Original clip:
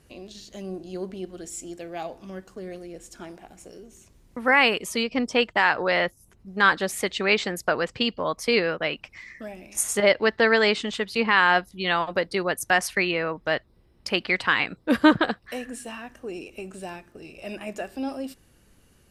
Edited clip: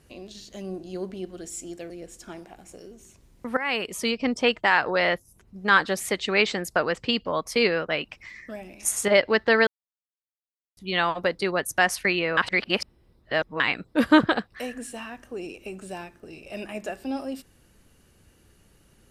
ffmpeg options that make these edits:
-filter_complex "[0:a]asplit=7[s0][s1][s2][s3][s4][s5][s6];[s0]atrim=end=1.902[s7];[s1]atrim=start=2.818:end=4.49,asetpts=PTS-STARTPTS,afade=t=out:st=1.668:d=0.004:c=hsin:silence=0.141254[s8];[s2]atrim=start=4.49:end=10.59,asetpts=PTS-STARTPTS,afade=t=in:d=0.45:silence=0.141254,afade=t=out:st=6.096:d=0.004:c=hsin[s9];[s3]atrim=start=10.59:end=11.69,asetpts=PTS-STARTPTS,volume=0[s10];[s4]atrim=start=11.69:end=13.292,asetpts=PTS-STARTPTS,afade=t=in:d=0.004:c=hsin[s11];[s5]atrim=start=13.288:end=14.522,asetpts=PTS-STARTPTS,areverse[s12];[s6]atrim=start=14.518[s13];[s8][s9][s10][s11]concat=n=4:v=0:a=1[s14];[s7][s14]acrossfade=d=0.004:c1=hsin:c2=hsin[s15];[s15][s12]acrossfade=d=0.004:c1=hsin:c2=hsin[s16];[s16][s13]acrossfade=d=0.004:c1=hsin:c2=hsin"

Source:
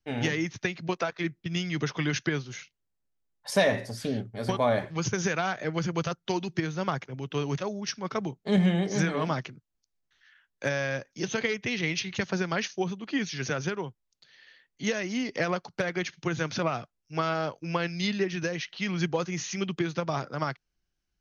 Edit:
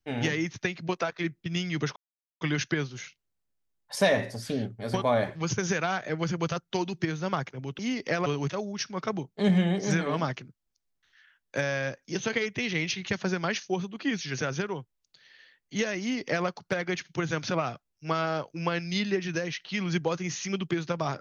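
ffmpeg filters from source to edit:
-filter_complex "[0:a]asplit=4[s0][s1][s2][s3];[s0]atrim=end=1.96,asetpts=PTS-STARTPTS,afade=t=out:st=1.956:d=0.004:c=hsin,apad=pad_dur=0.45[s4];[s1]atrim=start=1.96:end=7.342,asetpts=PTS-STARTPTS,afade=t=in:d=0.004:c=hsin[s5];[s2]atrim=start=15.078:end=15.552[s6];[s3]atrim=start=7.338[s7];[s4][s5]concat=n=2:v=0:a=1[s8];[s8][s6]acrossfade=d=0.004:c1=hsin:c2=hsin[s9];[s9][s7]acrossfade=d=0.004:c1=hsin:c2=hsin"

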